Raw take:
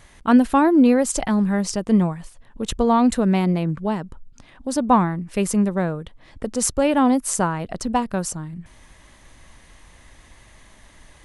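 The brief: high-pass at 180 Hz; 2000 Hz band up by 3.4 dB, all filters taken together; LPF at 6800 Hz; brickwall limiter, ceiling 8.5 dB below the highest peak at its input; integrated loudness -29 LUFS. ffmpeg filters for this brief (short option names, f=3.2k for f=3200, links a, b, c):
-af "highpass=180,lowpass=6.8k,equalizer=f=2k:t=o:g=4.5,volume=-6dB,alimiter=limit=-18.5dB:level=0:latency=1"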